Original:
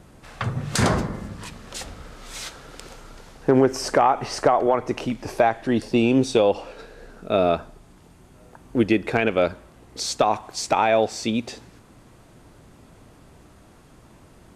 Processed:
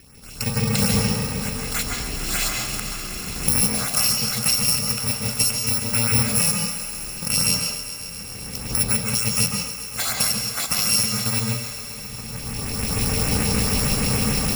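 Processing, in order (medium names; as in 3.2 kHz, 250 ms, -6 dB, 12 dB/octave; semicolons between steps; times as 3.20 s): bit-reversed sample order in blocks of 128 samples; recorder AGC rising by 16 dB/s; treble shelf 6.4 kHz -10.5 dB; in parallel at +1 dB: peak limiter -16 dBFS, peak gain reduction 11 dB; on the sum: LFO notch saw up 6.7 Hz 940–5100 Hz; thinning echo 133 ms, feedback 85%, high-pass 210 Hz, level -13 dB; reverberation RT60 0.50 s, pre-delay 137 ms, DRR 1.5 dB; trim -1 dB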